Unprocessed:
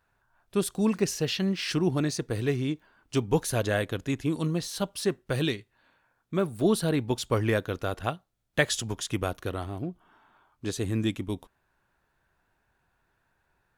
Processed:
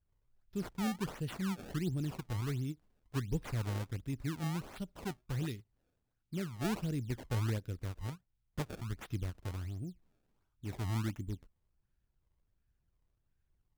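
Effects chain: amplifier tone stack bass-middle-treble 10-0-1; decimation with a swept rate 25×, swing 160% 1.4 Hz; endings held to a fixed fall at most 500 dB/s; trim +7.5 dB

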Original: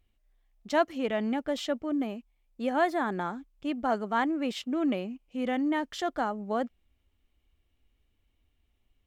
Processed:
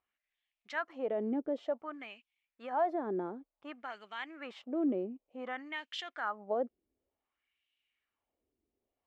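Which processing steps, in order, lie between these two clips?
peak limiter -21.5 dBFS, peak gain reduction 8 dB; LFO band-pass sine 0.55 Hz 360–2900 Hz; trim +3 dB

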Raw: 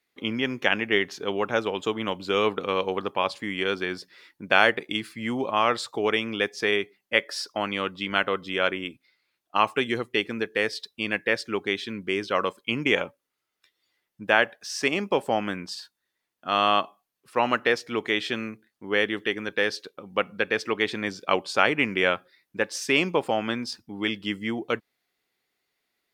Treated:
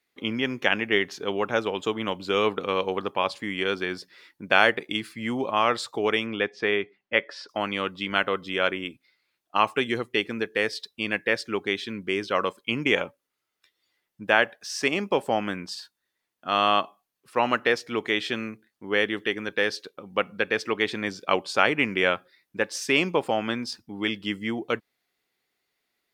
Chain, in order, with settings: 6.26–7.49 s: low-pass 3.1 kHz 12 dB/octave

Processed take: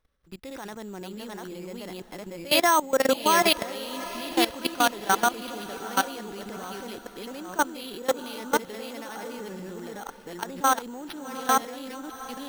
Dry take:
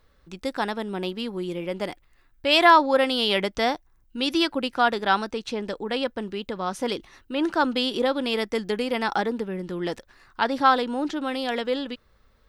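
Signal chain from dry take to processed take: chunks repeated in reverse 505 ms, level -1 dB; careless resampling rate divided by 6×, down none, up hold; level held to a coarse grid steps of 19 dB; on a send: echo that smears into a reverb 753 ms, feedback 45%, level -15 dB

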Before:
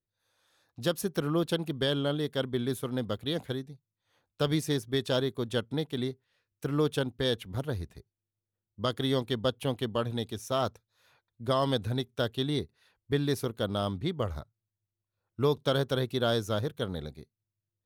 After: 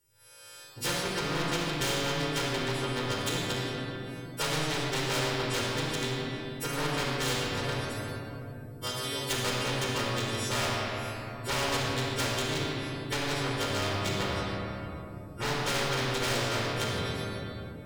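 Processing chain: partials quantised in pitch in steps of 2 st; 7.77–9.29 s: pre-emphasis filter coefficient 0.8; low-pass that closes with the level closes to 2 kHz, closed at -26 dBFS; dynamic bell 470 Hz, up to -4 dB, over -40 dBFS, Q 1.5; wavefolder -26.5 dBFS; flange 0.89 Hz, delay 1.3 ms, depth 6.1 ms, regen -89%; simulated room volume 3900 m³, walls mixed, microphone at 4.5 m; spectrum-flattening compressor 2:1

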